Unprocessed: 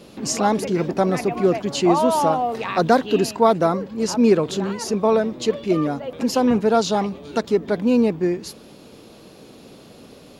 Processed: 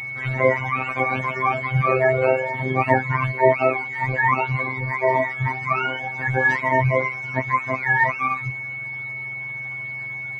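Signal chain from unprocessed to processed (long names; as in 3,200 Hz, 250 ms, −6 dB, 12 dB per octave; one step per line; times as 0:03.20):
frequency axis turned over on the octave scale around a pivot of 650 Hz
steady tone 2,200 Hz −31 dBFS
phases set to zero 130 Hz
level +3 dB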